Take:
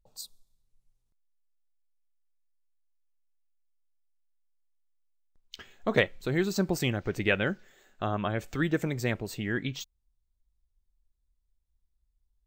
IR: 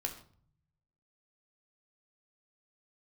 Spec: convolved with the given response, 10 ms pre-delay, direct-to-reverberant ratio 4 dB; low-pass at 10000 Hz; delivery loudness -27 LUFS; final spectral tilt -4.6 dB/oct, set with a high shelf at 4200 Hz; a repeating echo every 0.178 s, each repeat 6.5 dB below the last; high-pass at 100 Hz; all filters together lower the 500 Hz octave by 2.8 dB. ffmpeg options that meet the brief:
-filter_complex "[0:a]highpass=100,lowpass=10k,equalizer=f=500:t=o:g=-3.5,highshelf=f=4.2k:g=-3,aecho=1:1:178|356|534|712|890|1068:0.473|0.222|0.105|0.0491|0.0231|0.0109,asplit=2[a][b];[1:a]atrim=start_sample=2205,adelay=10[c];[b][c]afir=irnorm=-1:irlink=0,volume=-4.5dB[d];[a][d]amix=inputs=2:normalize=0,volume=2dB"

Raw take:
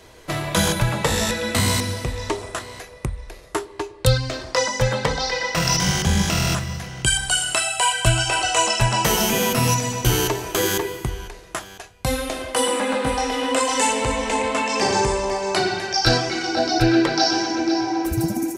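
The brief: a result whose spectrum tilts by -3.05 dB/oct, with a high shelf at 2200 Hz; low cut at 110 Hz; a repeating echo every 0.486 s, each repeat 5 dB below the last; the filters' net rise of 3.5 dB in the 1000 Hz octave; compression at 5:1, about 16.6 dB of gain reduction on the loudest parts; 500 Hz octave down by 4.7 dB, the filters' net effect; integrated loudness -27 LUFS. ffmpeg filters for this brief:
-af "highpass=110,equalizer=f=500:t=o:g=-8,equalizer=f=1k:t=o:g=5.5,highshelf=f=2.2k:g=5,acompressor=threshold=-31dB:ratio=5,aecho=1:1:486|972|1458|1944|2430|2916|3402:0.562|0.315|0.176|0.0988|0.0553|0.031|0.0173,volume=3dB"

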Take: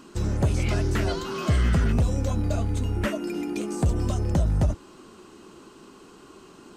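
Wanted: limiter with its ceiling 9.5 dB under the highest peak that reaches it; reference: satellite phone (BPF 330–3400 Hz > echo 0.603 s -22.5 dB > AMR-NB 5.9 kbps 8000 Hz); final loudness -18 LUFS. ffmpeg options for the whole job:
-af "alimiter=limit=-23dB:level=0:latency=1,highpass=330,lowpass=3.4k,aecho=1:1:603:0.075,volume=22dB" -ar 8000 -c:a libopencore_amrnb -b:a 5900

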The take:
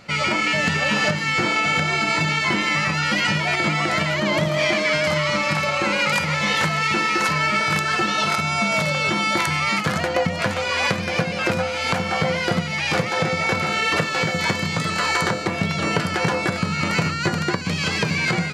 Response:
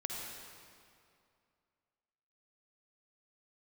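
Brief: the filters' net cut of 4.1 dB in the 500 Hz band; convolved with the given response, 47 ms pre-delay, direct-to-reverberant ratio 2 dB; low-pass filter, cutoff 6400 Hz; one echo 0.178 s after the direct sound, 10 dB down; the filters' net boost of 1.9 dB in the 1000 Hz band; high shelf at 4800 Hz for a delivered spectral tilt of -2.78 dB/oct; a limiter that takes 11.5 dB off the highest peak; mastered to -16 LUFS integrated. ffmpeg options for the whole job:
-filter_complex "[0:a]lowpass=6.4k,equalizer=f=500:t=o:g=-6.5,equalizer=f=1k:t=o:g=4.5,highshelf=f=4.8k:g=-4.5,alimiter=limit=-15dB:level=0:latency=1,aecho=1:1:178:0.316,asplit=2[a][b];[1:a]atrim=start_sample=2205,adelay=47[c];[b][c]afir=irnorm=-1:irlink=0,volume=-3.5dB[d];[a][d]amix=inputs=2:normalize=0,volume=4.5dB"

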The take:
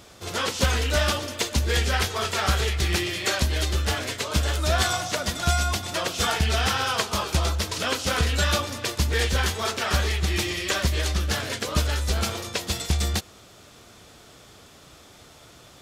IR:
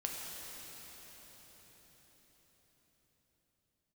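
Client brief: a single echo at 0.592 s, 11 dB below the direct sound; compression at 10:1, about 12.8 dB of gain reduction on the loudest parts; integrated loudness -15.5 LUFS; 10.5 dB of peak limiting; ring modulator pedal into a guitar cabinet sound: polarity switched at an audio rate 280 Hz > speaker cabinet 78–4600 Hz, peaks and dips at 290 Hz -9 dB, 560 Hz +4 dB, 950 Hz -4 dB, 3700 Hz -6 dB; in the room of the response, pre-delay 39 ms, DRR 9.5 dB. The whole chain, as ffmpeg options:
-filter_complex "[0:a]acompressor=threshold=-31dB:ratio=10,alimiter=level_in=4.5dB:limit=-24dB:level=0:latency=1,volume=-4.5dB,aecho=1:1:592:0.282,asplit=2[a][b];[1:a]atrim=start_sample=2205,adelay=39[c];[b][c]afir=irnorm=-1:irlink=0,volume=-11.5dB[d];[a][d]amix=inputs=2:normalize=0,aeval=exprs='val(0)*sgn(sin(2*PI*280*n/s))':c=same,highpass=78,equalizer=f=290:t=q:w=4:g=-9,equalizer=f=560:t=q:w=4:g=4,equalizer=f=950:t=q:w=4:g=-4,equalizer=f=3.7k:t=q:w=4:g=-6,lowpass=f=4.6k:w=0.5412,lowpass=f=4.6k:w=1.3066,volume=22.5dB"

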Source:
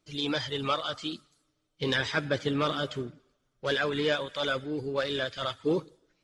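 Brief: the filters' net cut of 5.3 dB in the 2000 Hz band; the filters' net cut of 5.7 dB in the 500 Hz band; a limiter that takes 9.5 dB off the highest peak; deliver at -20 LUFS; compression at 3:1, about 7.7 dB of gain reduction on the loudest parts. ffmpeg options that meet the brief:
-af "equalizer=f=500:t=o:g=-6.5,equalizer=f=2k:t=o:g=-7,acompressor=threshold=-37dB:ratio=3,volume=24dB,alimiter=limit=-10.5dB:level=0:latency=1"

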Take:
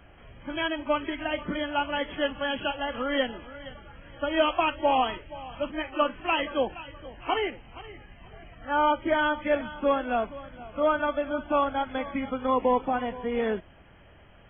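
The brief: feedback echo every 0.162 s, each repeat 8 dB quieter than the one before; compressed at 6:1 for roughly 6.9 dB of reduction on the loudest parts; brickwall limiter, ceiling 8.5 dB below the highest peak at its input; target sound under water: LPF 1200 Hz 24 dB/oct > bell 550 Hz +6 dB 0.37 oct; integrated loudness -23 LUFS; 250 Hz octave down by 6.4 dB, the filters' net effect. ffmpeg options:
-af "equalizer=f=250:t=o:g=-8,acompressor=threshold=-27dB:ratio=6,alimiter=level_in=0.5dB:limit=-24dB:level=0:latency=1,volume=-0.5dB,lowpass=f=1.2k:w=0.5412,lowpass=f=1.2k:w=1.3066,equalizer=f=550:t=o:w=0.37:g=6,aecho=1:1:162|324|486|648|810:0.398|0.159|0.0637|0.0255|0.0102,volume=10.5dB"

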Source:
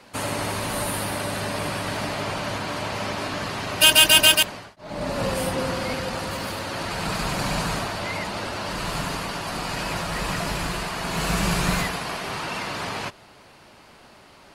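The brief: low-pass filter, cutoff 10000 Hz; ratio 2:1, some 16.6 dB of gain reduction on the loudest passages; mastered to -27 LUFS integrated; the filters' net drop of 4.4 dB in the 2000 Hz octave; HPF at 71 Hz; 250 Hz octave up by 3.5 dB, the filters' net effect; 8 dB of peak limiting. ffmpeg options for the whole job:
-af "highpass=71,lowpass=10k,equalizer=f=250:t=o:g=5,equalizer=f=2k:t=o:g=-6.5,acompressor=threshold=-45dB:ratio=2,volume=12.5dB,alimiter=limit=-17dB:level=0:latency=1"

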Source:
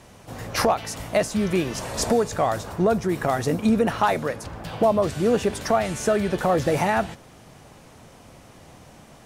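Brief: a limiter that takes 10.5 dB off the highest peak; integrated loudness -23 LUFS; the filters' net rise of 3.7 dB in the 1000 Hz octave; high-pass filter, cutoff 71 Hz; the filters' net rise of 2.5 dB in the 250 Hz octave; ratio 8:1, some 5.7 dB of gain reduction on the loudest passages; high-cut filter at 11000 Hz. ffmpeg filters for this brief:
-af "highpass=71,lowpass=11k,equalizer=f=250:t=o:g=3,equalizer=f=1k:t=o:g=5,acompressor=threshold=-18dB:ratio=8,volume=4dB,alimiter=limit=-12dB:level=0:latency=1"

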